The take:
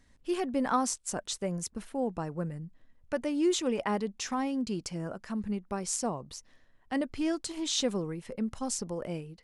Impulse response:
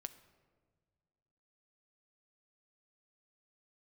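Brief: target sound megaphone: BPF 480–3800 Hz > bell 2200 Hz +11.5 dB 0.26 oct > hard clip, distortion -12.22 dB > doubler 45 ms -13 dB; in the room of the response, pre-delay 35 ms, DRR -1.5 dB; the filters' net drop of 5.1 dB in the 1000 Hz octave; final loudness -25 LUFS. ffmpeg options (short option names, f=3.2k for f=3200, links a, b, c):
-filter_complex "[0:a]equalizer=f=1k:t=o:g=-6.5,asplit=2[a][b];[1:a]atrim=start_sample=2205,adelay=35[c];[b][c]afir=irnorm=-1:irlink=0,volume=6dB[d];[a][d]amix=inputs=2:normalize=0,highpass=480,lowpass=3.8k,equalizer=f=2.2k:t=o:w=0.26:g=11.5,asoftclip=type=hard:threshold=-28.5dB,asplit=2[e][f];[f]adelay=45,volume=-13dB[g];[e][g]amix=inputs=2:normalize=0,volume=11dB"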